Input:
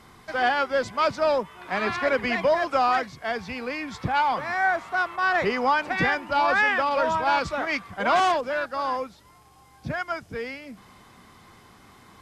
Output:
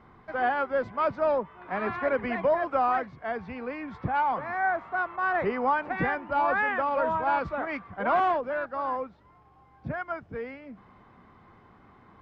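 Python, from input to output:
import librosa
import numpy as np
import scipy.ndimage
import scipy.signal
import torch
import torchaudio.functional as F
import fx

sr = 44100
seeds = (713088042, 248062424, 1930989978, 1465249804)

y = scipy.signal.sosfilt(scipy.signal.butter(2, 1600.0, 'lowpass', fs=sr, output='sos'), x)
y = y * 10.0 ** (-2.5 / 20.0)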